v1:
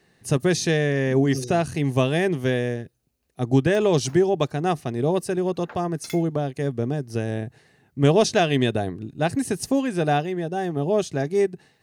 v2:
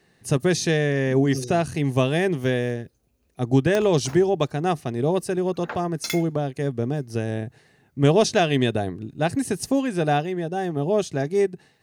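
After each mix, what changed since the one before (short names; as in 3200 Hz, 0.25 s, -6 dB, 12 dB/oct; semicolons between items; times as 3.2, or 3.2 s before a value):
background +9.0 dB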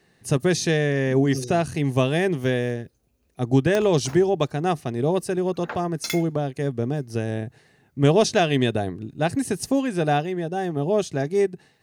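none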